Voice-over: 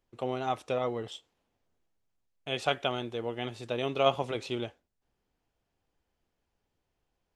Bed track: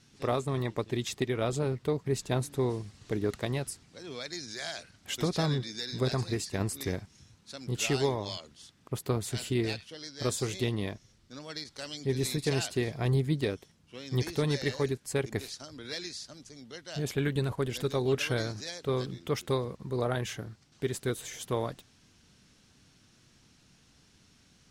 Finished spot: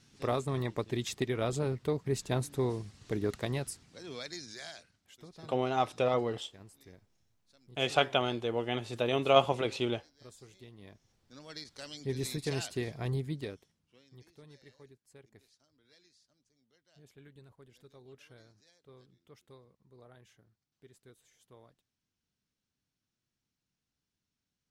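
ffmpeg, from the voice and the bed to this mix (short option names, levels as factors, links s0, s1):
-filter_complex "[0:a]adelay=5300,volume=1.26[s0];[1:a]volume=5.96,afade=t=out:st=4.15:d=0.96:silence=0.0944061,afade=t=in:st=10.77:d=0.82:silence=0.133352,afade=t=out:st=12.9:d=1.26:silence=0.0841395[s1];[s0][s1]amix=inputs=2:normalize=0"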